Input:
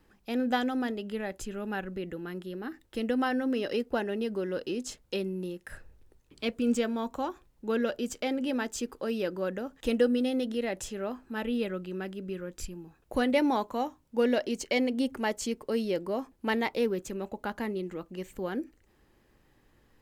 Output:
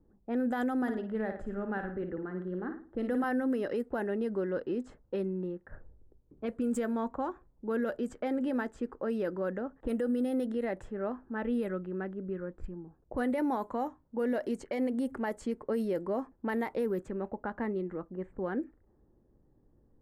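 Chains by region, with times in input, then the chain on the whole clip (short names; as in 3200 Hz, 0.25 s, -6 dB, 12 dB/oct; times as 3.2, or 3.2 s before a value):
0.77–3.24 bell 2500 Hz -4 dB 0.28 oct + flutter echo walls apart 9.5 m, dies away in 0.45 s
whole clip: low-pass opened by the level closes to 470 Hz, open at -25 dBFS; limiter -23.5 dBFS; band shelf 3900 Hz -12.5 dB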